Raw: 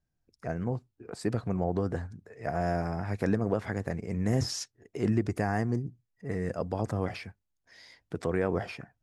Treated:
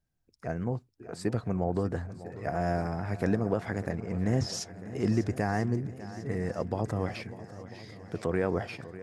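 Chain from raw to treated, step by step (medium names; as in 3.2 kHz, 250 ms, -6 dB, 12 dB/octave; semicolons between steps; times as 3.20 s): 3.91–4.53 s: distance through air 55 m; on a send: shuffle delay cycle 996 ms, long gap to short 1.5:1, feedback 52%, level -15.5 dB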